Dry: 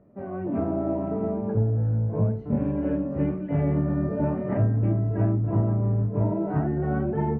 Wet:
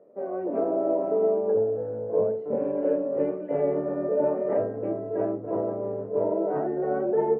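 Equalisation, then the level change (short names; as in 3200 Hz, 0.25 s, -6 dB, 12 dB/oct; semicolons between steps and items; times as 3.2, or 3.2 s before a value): resonant high-pass 480 Hz, resonance Q 4.2; tilt -2 dB/oct; -3.0 dB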